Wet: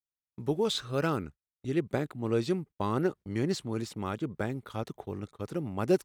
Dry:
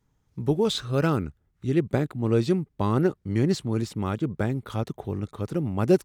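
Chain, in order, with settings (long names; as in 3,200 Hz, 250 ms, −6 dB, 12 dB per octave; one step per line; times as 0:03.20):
noise gate −37 dBFS, range −33 dB
low-shelf EQ 240 Hz −8 dB
level −3 dB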